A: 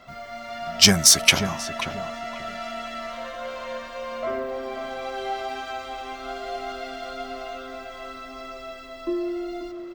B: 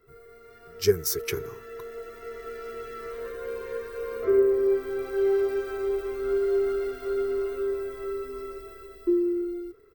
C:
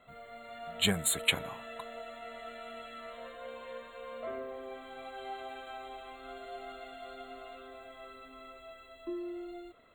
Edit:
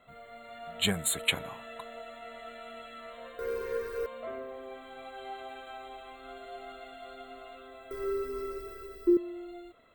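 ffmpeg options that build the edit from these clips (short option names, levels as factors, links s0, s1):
-filter_complex "[1:a]asplit=2[s0][s1];[2:a]asplit=3[s2][s3][s4];[s2]atrim=end=3.392[s5];[s0]atrim=start=3.388:end=4.062[s6];[s3]atrim=start=4.058:end=7.912[s7];[s1]atrim=start=7.908:end=9.172[s8];[s4]atrim=start=9.168[s9];[s5][s6]acrossfade=d=0.004:c1=hsin:c2=hsin[s10];[s10][s7]acrossfade=d=0.004:c1=hsin:c2=hsin[s11];[s11][s8]acrossfade=d=0.004:c1=hsin:c2=hsin[s12];[s12][s9]acrossfade=d=0.004:c1=hsin:c2=hsin"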